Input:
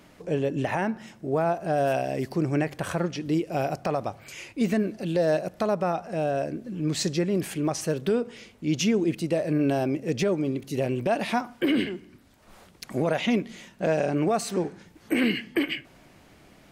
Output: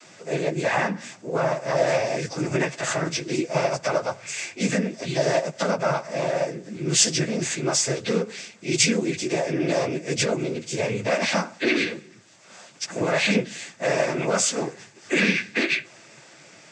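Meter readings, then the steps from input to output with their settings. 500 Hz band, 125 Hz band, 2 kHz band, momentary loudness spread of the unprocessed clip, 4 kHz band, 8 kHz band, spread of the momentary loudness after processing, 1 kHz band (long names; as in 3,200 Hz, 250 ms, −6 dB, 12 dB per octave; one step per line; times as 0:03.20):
+2.0 dB, 0.0 dB, +8.0 dB, 7 LU, +8.0 dB, +13.0 dB, 9 LU, +1.5 dB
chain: every partial snapped to a pitch grid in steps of 6 semitones
cochlear-implant simulation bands 16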